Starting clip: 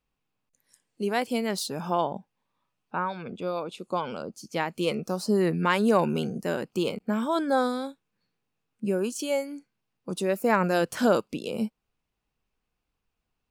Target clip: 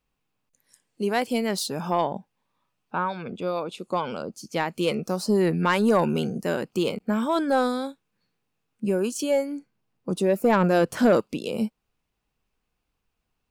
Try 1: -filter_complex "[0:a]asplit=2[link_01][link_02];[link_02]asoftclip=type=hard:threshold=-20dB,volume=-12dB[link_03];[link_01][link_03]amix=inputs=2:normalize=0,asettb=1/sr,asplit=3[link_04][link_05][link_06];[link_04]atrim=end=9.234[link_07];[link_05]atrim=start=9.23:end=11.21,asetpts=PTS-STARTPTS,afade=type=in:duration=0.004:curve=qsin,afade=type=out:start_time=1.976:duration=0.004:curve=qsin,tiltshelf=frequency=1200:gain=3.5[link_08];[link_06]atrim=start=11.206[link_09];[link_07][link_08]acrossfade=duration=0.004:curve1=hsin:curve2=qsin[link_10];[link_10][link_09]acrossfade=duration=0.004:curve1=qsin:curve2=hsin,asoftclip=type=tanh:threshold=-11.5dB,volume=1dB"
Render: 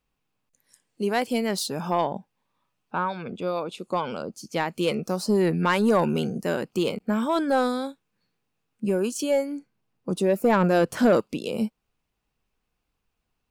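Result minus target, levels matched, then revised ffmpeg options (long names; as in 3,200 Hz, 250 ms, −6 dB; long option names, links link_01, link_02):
hard clipping: distortion +17 dB
-filter_complex "[0:a]asplit=2[link_01][link_02];[link_02]asoftclip=type=hard:threshold=-12.5dB,volume=-12dB[link_03];[link_01][link_03]amix=inputs=2:normalize=0,asettb=1/sr,asplit=3[link_04][link_05][link_06];[link_04]atrim=end=9.234[link_07];[link_05]atrim=start=9.23:end=11.21,asetpts=PTS-STARTPTS,afade=type=in:duration=0.004:curve=qsin,afade=type=out:start_time=1.976:duration=0.004:curve=qsin,tiltshelf=frequency=1200:gain=3.5[link_08];[link_06]atrim=start=11.206[link_09];[link_07][link_08]acrossfade=duration=0.004:curve1=hsin:curve2=qsin[link_10];[link_10][link_09]acrossfade=duration=0.004:curve1=qsin:curve2=hsin,asoftclip=type=tanh:threshold=-11.5dB,volume=1dB"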